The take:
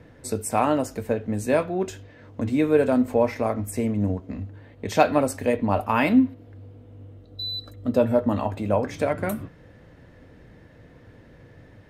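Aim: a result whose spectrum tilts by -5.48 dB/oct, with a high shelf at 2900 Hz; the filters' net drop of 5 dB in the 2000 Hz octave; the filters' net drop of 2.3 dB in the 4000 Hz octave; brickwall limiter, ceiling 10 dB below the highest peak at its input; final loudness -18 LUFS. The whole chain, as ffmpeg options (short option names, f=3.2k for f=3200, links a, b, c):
-af "equalizer=f=2k:t=o:g=-8.5,highshelf=f=2.9k:g=8.5,equalizer=f=4k:t=o:g=-6.5,volume=9dB,alimiter=limit=-6dB:level=0:latency=1"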